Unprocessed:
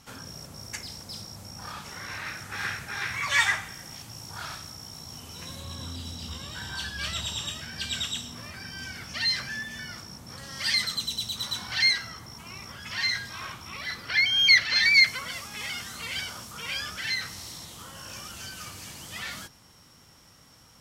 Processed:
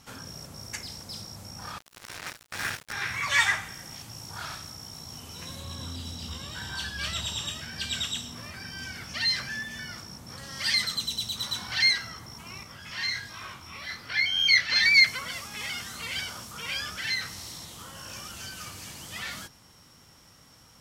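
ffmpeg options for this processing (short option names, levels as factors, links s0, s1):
-filter_complex "[0:a]asettb=1/sr,asplit=3[s0][s1][s2];[s0]atrim=end=1.784[s3];[s1]atrim=start=1.78:end=2.93,asetpts=PTS-STARTPTS,afade=t=in:d=0.004:c=qsin,afade=t=out:st=1.146:d=0.004:c=qsin,acrusher=bits=4:mix=0:aa=0.5[s4];[s2]atrim=start=2.926[s5];[s3][s4]acrossfade=d=0.004:c1=hsin:c2=qsin[s6];[s6][s5]acrossfade=d=0.004:c1=qsin:c2=hsin,asettb=1/sr,asplit=3[s7][s8][s9];[s7]atrim=end=12.634[s10];[s8]atrim=start=12.63:end=14.69,asetpts=PTS-STARTPTS,afade=t=in:d=0.004:c=qsin,afade=t=out:st=2.056:d=0.004:c=qsin,flanger=delay=19:depth=6.5:speed=1.3[s11];[s9]atrim=start=14.686[s12];[s10][s11]acrossfade=d=0.004:c1=hsin:c2=qsin[s13];[s13][s12]acrossfade=d=0.004:c1=qsin:c2=hsin"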